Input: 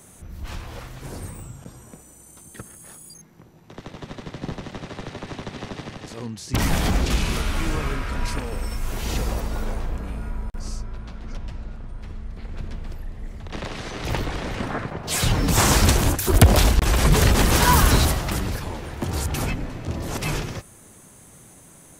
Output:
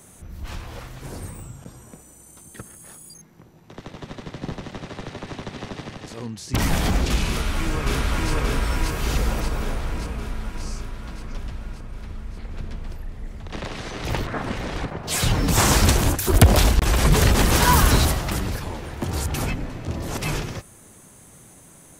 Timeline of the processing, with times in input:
7.28–8.32 s: echo throw 580 ms, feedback 65%, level 0 dB
14.27–14.85 s: reverse

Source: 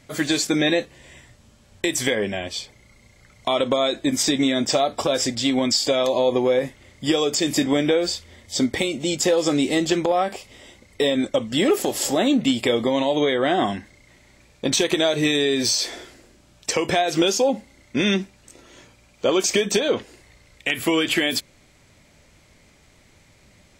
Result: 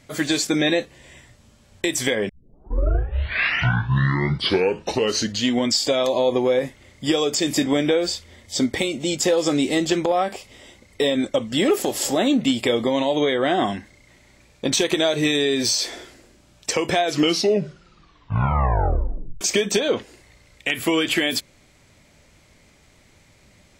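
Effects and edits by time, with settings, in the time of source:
2.29 s: tape start 3.46 s
16.99 s: tape stop 2.42 s

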